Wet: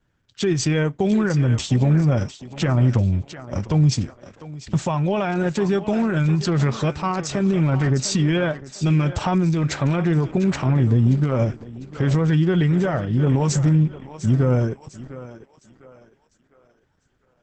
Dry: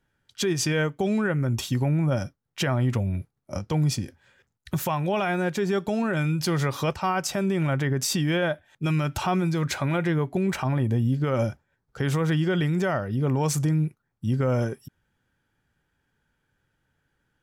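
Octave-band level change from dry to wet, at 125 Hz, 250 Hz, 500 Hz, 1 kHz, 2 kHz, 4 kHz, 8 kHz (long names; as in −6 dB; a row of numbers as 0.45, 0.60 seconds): +6.5, +5.5, +3.0, +1.5, +0.5, +1.5, +1.5 decibels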